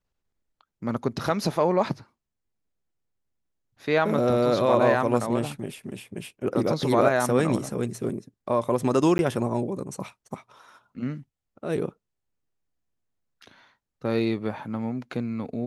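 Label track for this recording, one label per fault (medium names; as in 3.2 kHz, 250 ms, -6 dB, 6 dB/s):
9.180000	9.190000	dropout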